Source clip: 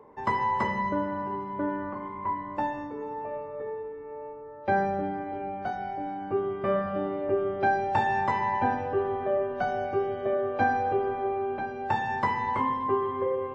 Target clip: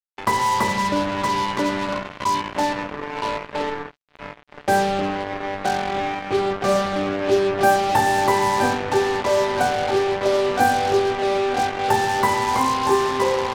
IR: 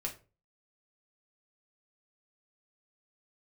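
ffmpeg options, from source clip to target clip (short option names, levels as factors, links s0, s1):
-af "bandreject=f=50:t=h:w=6,bandreject=f=100:t=h:w=6,bandreject=f=150:t=h:w=6,aecho=1:1:966|1932|2898|3864|4830:0.473|0.199|0.0835|0.0351|0.0147,acrusher=bits=4:mix=0:aa=0.5,volume=2.11"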